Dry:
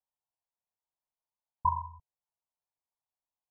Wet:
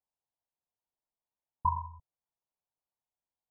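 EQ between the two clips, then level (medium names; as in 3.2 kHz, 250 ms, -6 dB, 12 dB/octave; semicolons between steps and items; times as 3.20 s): low-pass 1 kHz; +1.5 dB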